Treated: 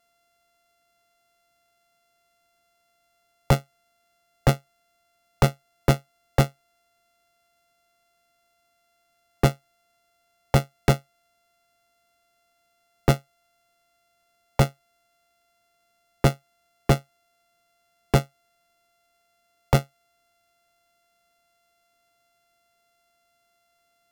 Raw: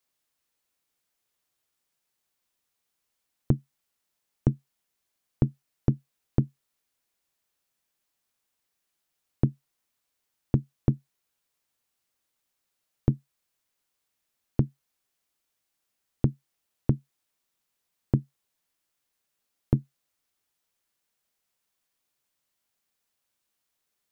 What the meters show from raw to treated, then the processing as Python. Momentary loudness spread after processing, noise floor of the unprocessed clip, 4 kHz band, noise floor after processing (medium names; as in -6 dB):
3 LU, -81 dBFS, no reading, -70 dBFS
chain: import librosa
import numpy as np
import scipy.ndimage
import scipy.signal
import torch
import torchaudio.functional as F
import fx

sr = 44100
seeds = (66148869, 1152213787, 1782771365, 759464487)

y = np.r_[np.sort(x[:len(x) // 64 * 64].reshape(-1, 64), axis=1).ravel(), x[len(x) // 64 * 64:]]
y = fx.fold_sine(y, sr, drive_db=11, ceiling_db=-6.5)
y = y * librosa.db_to_amplitude(-4.0)